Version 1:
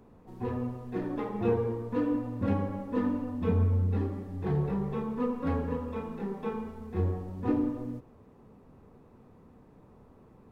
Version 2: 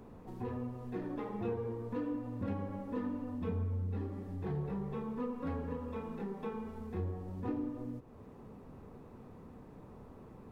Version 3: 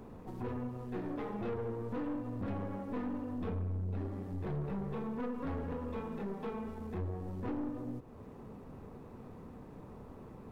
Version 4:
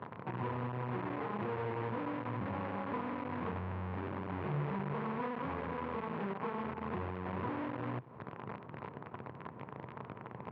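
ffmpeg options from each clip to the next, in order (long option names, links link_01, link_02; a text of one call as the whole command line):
ffmpeg -i in.wav -af "acompressor=threshold=-48dB:ratio=2,volume=3.5dB" out.wav
ffmpeg -i in.wav -af "aeval=exprs='(tanh(70.8*val(0)+0.4)-tanh(0.4))/70.8':channel_layout=same,volume=4dB" out.wav
ffmpeg -i in.wav -af "acompressor=threshold=-41dB:ratio=6,acrusher=bits=8:dc=4:mix=0:aa=0.000001,highpass=frequency=100:width=0.5412,highpass=frequency=100:width=1.3066,equalizer=frequency=130:width_type=q:width=4:gain=6,equalizer=frequency=260:width_type=q:width=4:gain=-4,equalizer=frequency=1000:width_type=q:width=4:gain=8,lowpass=frequency=2400:width=0.5412,lowpass=frequency=2400:width=1.3066,volume=4.5dB" out.wav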